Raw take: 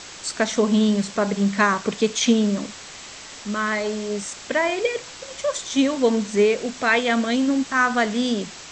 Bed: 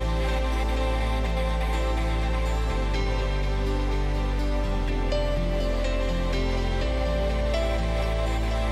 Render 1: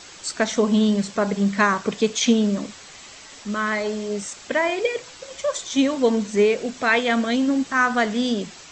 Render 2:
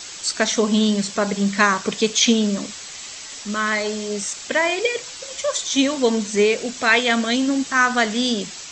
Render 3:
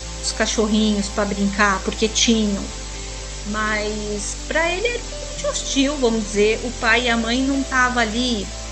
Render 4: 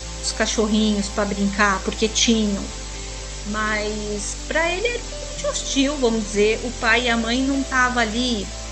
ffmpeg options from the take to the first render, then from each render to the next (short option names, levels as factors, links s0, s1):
-af "afftdn=nr=6:nf=-40"
-filter_complex "[0:a]acrossover=split=6700[s0][s1];[s1]acompressor=threshold=0.00794:ratio=4:attack=1:release=60[s2];[s0][s2]amix=inputs=2:normalize=0,highshelf=f=2700:g=11"
-filter_complex "[1:a]volume=0.447[s0];[0:a][s0]amix=inputs=2:normalize=0"
-af "volume=0.891"